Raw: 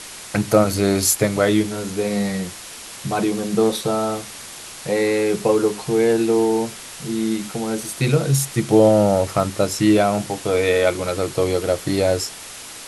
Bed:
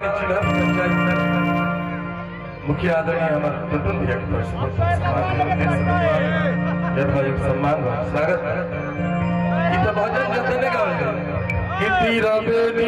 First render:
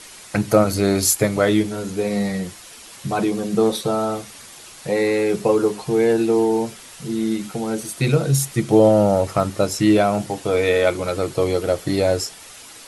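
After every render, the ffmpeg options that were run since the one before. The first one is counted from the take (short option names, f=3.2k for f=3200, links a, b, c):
-af "afftdn=nr=7:nf=-37"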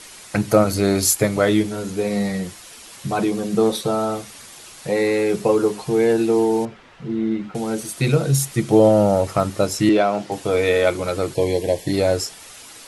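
-filter_complex "[0:a]asettb=1/sr,asplit=3[a][b][c];[a]atrim=end=6.654[d];[b]atrim=start=6.65:end=7.55,asetpts=PTS-STARTPTS,afade=t=in:d=0.004:c=qsin,afade=t=out:st=0.896:d=0.004:c=qsin,lowpass=2.1k[e];[c]atrim=start=7.546[f];[d][e]acrossfade=d=0.004:c1=hsin:c2=qsin[g];[g][f]acrossfade=d=0.004:c1=qsin:c2=hsin,asettb=1/sr,asplit=3[h][i][j];[h]atrim=end=9.894[k];[i]atrim=start=9.89:end=10.32,asetpts=PTS-STARTPTS,afade=t=in:d=0.004:c=qsin,afade=t=out:st=0.426:d=0.004:c=qsin,acrossover=split=200 6000:gain=0.158 1 0.178[l][m][n];[l][m][n]amix=inputs=3:normalize=0[o];[j]atrim=start=10.316[p];[k][o]acrossfade=d=0.004:c1=hsin:c2=qsin[q];[q][p]acrossfade=d=0.004:c1=qsin:c2=hsin,asplit=3[r][s][t];[r]afade=t=out:st=11.34:d=0.02[u];[s]asuperstop=centerf=1300:order=20:qfactor=2.6,afade=t=in:st=11.34:d=0.02,afade=t=out:st=11.92:d=0.02[v];[t]afade=t=in:st=11.92:d=0.02[w];[u][v][w]amix=inputs=3:normalize=0"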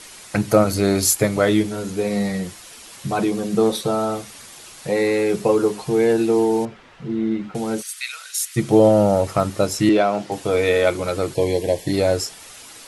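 -filter_complex "[0:a]asplit=3[a][b][c];[a]afade=t=out:st=7.81:d=0.02[d];[b]highpass=f=1.5k:w=0.5412,highpass=f=1.5k:w=1.3066,afade=t=in:st=7.81:d=0.02,afade=t=out:st=8.55:d=0.02[e];[c]afade=t=in:st=8.55:d=0.02[f];[d][e][f]amix=inputs=3:normalize=0"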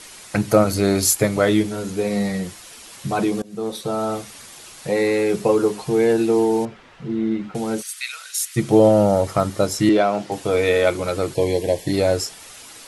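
-filter_complex "[0:a]asettb=1/sr,asplit=3[a][b][c];[a]atrim=end=9.054[d];[b]atrim=start=9.05:end=10.03,asetpts=PTS-STARTPTS,afade=t=in:d=0.004:c=qsin,afade=t=out:st=0.976:d=0.004:c=qsin,bandreject=f=2.6k:w=12[e];[c]atrim=start=10.026[f];[d][e]acrossfade=d=0.004:c1=hsin:c2=qsin[g];[g][f]acrossfade=d=0.004:c1=qsin:c2=hsin,asplit=2[h][i];[h]atrim=end=3.42,asetpts=PTS-STARTPTS,afade=t=out:st=3.416:d=0.004:c=hsin:silence=0.0749894[j];[i]atrim=start=3.42,asetpts=PTS-STARTPTS,afade=t=in:d=0.73:silence=0.0749894[k];[j][k]concat=n=2:v=0:a=1"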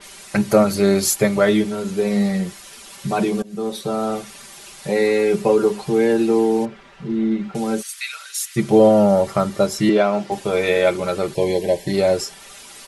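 -af "aecho=1:1:5.1:0.61,adynamicequalizer=threshold=0.01:dfrequency=4500:dqfactor=0.7:tfrequency=4500:tqfactor=0.7:attack=5:release=100:ratio=0.375:range=2:mode=cutabove:tftype=highshelf"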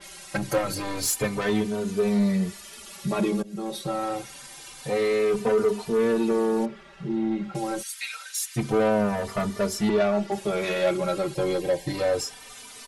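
-filter_complex "[0:a]asoftclip=type=tanh:threshold=-15.5dB,asplit=2[a][b];[b]adelay=3.2,afreqshift=-0.27[c];[a][c]amix=inputs=2:normalize=1"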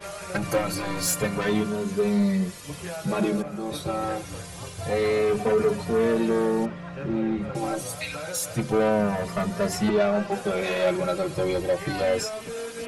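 -filter_complex "[1:a]volume=-16dB[a];[0:a][a]amix=inputs=2:normalize=0"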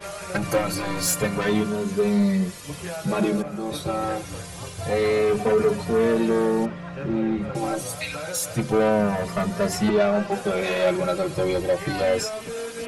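-af "volume=2dB"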